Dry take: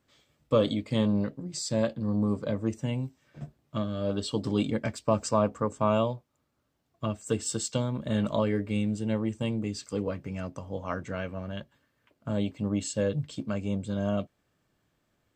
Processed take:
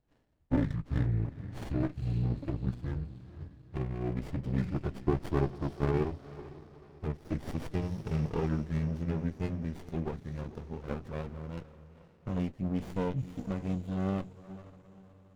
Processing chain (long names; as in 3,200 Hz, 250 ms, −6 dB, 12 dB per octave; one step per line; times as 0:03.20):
pitch glide at a constant tempo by −11.5 semitones ending unshifted
feedback delay with all-pass diffusion 469 ms, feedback 42%, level −15 dB
windowed peak hold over 33 samples
level −2.5 dB